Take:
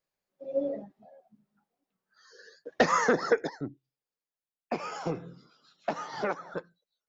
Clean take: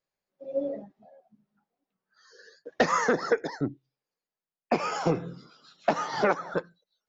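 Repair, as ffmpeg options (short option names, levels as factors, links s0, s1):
-af "asetnsamples=n=441:p=0,asendcmd='3.49 volume volume 7dB',volume=1"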